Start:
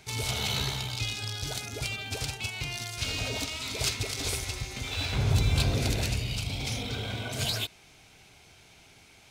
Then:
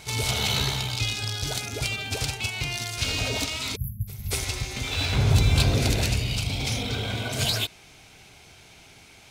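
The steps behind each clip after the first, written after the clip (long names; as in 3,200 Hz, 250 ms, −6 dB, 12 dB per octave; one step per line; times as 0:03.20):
time-frequency box erased 0:03.76–0:04.31, 220–11,000 Hz
backwards echo 234 ms −21 dB
level +5 dB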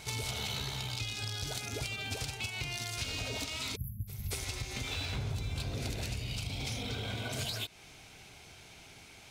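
downward compressor 6 to 1, threshold −31 dBFS, peak gain reduction 16 dB
level −3 dB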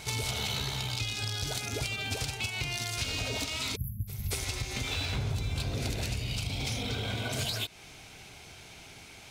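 hard clipping −25 dBFS, distortion −39 dB
level +4 dB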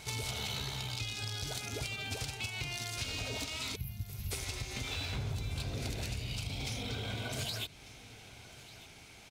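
repeating echo 1,195 ms, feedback 33%, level −19 dB
level −5 dB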